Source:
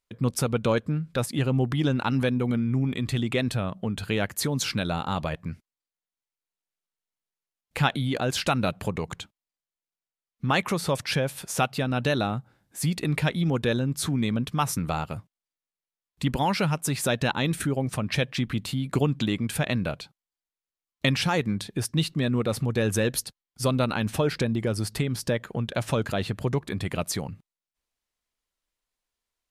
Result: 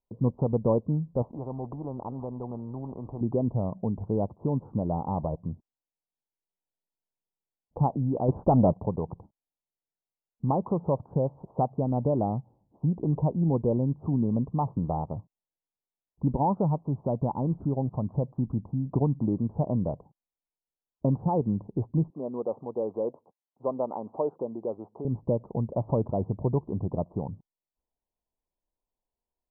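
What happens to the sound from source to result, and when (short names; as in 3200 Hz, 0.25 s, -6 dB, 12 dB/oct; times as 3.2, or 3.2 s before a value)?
1.22–3.21 spectral compressor 2:1
8.28–8.77 sample leveller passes 2
16.78–19.24 bell 440 Hz -3.5 dB 1.4 oct
22.1–25.05 HPF 440 Hz
whole clip: steep low-pass 1000 Hz 72 dB/oct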